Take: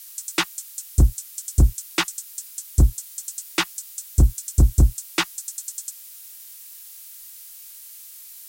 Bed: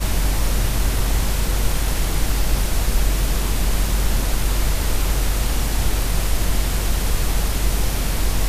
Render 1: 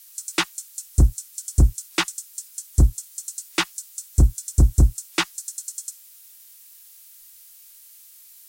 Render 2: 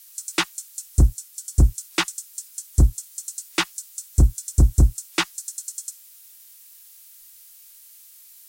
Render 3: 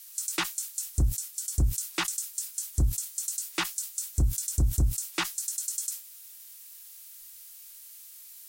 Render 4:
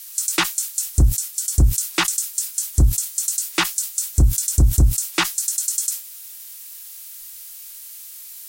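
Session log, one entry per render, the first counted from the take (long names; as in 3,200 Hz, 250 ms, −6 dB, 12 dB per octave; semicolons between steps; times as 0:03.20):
noise reduction from a noise print 6 dB
0:01.13–0:01.59: notch comb filter 260 Hz
brickwall limiter −17 dBFS, peak gain reduction 10.5 dB; level that may fall only so fast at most 140 dB per second
level +10 dB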